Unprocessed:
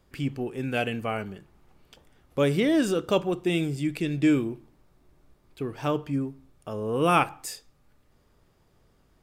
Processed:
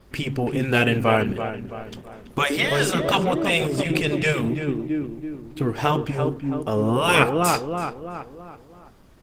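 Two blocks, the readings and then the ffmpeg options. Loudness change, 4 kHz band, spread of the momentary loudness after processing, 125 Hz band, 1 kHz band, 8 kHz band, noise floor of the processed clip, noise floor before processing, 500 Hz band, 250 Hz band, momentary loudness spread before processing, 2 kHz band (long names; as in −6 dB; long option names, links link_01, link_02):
+5.0 dB, +10.0 dB, 16 LU, +7.0 dB, +6.5 dB, +9.0 dB, −49 dBFS, −64 dBFS, +5.0 dB, +2.5 dB, 15 LU, +10.5 dB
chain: -filter_complex "[0:a]adynamicequalizer=threshold=0.00141:dfrequency=6900:dqfactor=4.7:tfrequency=6900:tqfactor=4.7:attack=5:release=100:ratio=0.375:range=2:mode=cutabove:tftype=bell,asplit=2[link_01][link_02];[link_02]adelay=332,lowpass=frequency=2500:poles=1,volume=-10dB,asplit=2[link_03][link_04];[link_04]adelay=332,lowpass=frequency=2500:poles=1,volume=0.49,asplit=2[link_05][link_06];[link_06]adelay=332,lowpass=frequency=2500:poles=1,volume=0.49,asplit=2[link_07][link_08];[link_08]adelay=332,lowpass=frequency=2500:poles=1,volume=0.49,asplit=2[link_09][link_10];[link_10]adelay=332,lowpass=frequency=2500:poles=1,volume=0.49[link_11];[link_01][link_03][link_05][link_07][link_09][link_11]amix=inputs=6:normalize=0,afftfilt=real='re*lt(hypot(re,im),0.282)':imag='im*lt(hypot(re,im),0.282)':win_size=1024:overlap=0.75,acontrast=35,volume=6.5dB" -ar 48000 -c:a libopus -b:a 16k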